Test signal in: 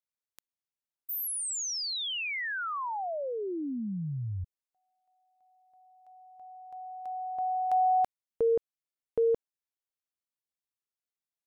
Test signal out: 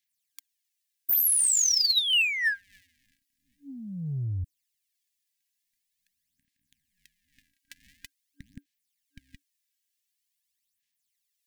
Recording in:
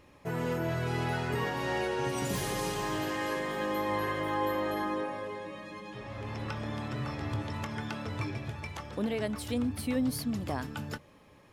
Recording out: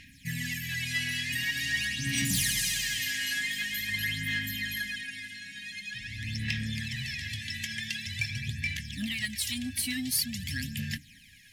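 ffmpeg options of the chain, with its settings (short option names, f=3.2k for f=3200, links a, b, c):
-filter_complex "[0:a]tiltshelf=f=1.2k:g=-7.5,aphaser=in_gain=1:out_gain=1:delay=3.1:decay=0.62:speed=0.46:type=sinusoidal,afftfilt=real='re*(1-between(b*sr/4096,290,1600))':imag='im*(1-between(b*sr/4096,290,1600))':win_size=4096:overlap=0.75,asplit=2[a][b];[b]asoftclip=type=tanh:threshold=-34dB,volume=-3.5dB[c];[a][c]amix=inputs=2:normalize=0"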